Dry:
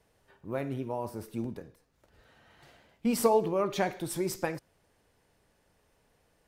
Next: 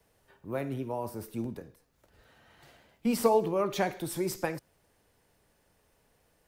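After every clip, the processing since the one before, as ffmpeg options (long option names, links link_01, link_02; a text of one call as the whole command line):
ffmpeg -i in.wav -filter_complex "[0:a]highshelf=frequency=12000:gain=9.5,acrossover=split=210|490|5200[link_01][link_02][link_03][link_04];[link_04]alimiter=level_in=7dB:limit=-24dB:level=0:latency=1,volume=-7dB[link_05];[link_01][link_02][link_03][link_05]amix=inputs=4:normalize=0" out.wav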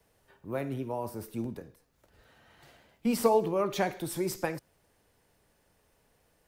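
ffmpeg -i in.wav -af anull out.wav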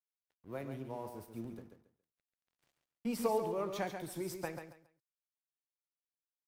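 ffmpeg -i in.wav -af "aeval=exprs='sgn(val(0))*max(abs(val(0))-0.00237,0)':channel_layout=same,aecho=1:1:138|276|414:0.422|0.097|0.0223,volume=-8.5dB" out.wav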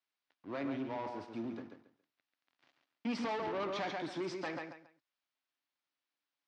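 ffmpeg -i in.wav -filter_complex "[0:a]asplit=2[link_01][link_02];[link_02]highpass=frequency=720:poles=1,volume=19dB,asoftclip=type=tanh:threshold=-19.5dB[link_03];[link_01][link_03]amix=inputs=2:normalize=0,lowpass=frequency=3600:poles=1,volume=-6dB,asoftclip=type=tanh:threshold=-31dB,highpass=100,equalizer=frequency=100:width_type=q:width=4:gain=5,equalizer=frequency=280:width_type=q:width=4:gain=9,equalizer=frequency=460:width_type=q:width=4:gain=-5,lowpass=frequency=5200:width=0.5412,lowpass=frequency=5200:width=1.3066,volume=-2dB" out.wav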